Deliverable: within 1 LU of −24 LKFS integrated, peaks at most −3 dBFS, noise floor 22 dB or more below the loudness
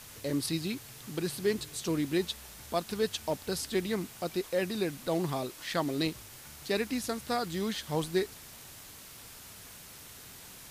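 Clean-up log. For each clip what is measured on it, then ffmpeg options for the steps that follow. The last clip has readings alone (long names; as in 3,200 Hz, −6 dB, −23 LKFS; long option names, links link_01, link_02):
background noise floor −50 dBFS; target noise floor −55 dBFS; integrated loudness −33.0 LKFS; sample peak −17.5 dBFS; target loudness −24.0 LKFS
→ -af "afftdn=noise_reduction=6:noise_floor=-50"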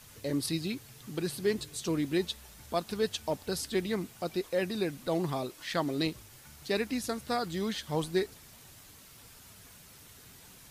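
background noise floor −54 dBFS; target noise floor −56 dBFS
→ -af "afftdn=noise_reduction=6:noise_floor=-54"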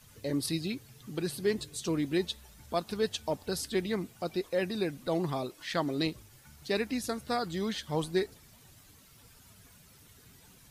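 background noise floor −58 dBFS; integrated loudness −33.5 LKFS; sample peak −17.5 dBFS; target loudness −24.0 LKFS
→ -af "volume=9.5dB"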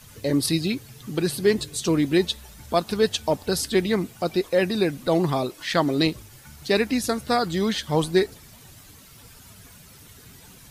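integrated loudness −24.0 LKFS; sample peak −8.0 dBFS; background noise floor −49 dBFS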